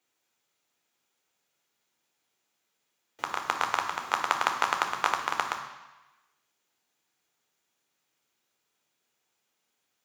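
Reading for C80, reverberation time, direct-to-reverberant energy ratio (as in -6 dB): 9.5 dB, 1.1 s, 4.0 dB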